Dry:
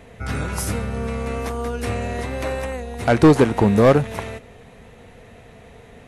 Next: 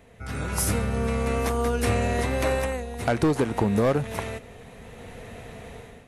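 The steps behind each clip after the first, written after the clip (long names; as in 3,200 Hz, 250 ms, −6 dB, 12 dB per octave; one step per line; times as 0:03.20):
downward compressor 6 to 1, threshold −16 dBFS, peak gain reduction 7.5 dB
high-shelf EQ 10,000 Hz +7 dB
automatic gain control gain up to 13 dB
level −9 dB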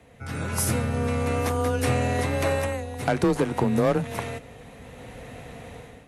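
frequency shifter +21 Hz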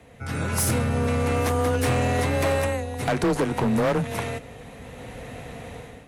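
hard clipping −21 dBFS, distortion −11 dB
level +3 dB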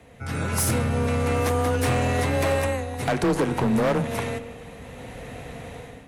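convolution reverb RT60 1.6 s, pre-delay 45 ms, DRR 12.5 dB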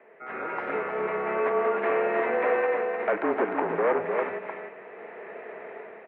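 single-sideband voice off tune −54 Hz 410–2,300 Hz
single-tap delay 305 ms −5.5 dB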